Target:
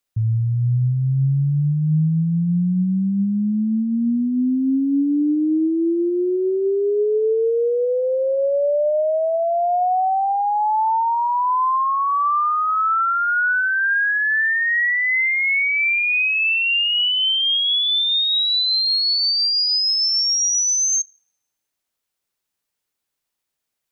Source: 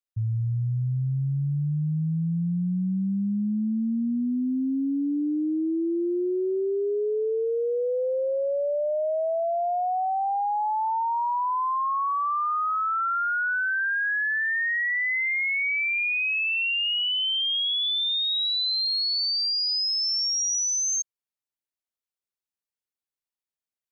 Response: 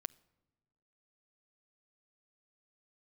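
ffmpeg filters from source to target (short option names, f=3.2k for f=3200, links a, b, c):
-filter_complex "[0:a]alimiter=level_in=4.5dB:limit=-24dB:level=0:latency=1,volume=-4.5dB,asplit=2[a][b];[1:a]atrim=start_sample=2205[c];[b][c]afir=irnorm=-1:irlink=0,volume=19dB[d];[a][d]amix=inputs=2:normalize=0,volume=-4.5dB"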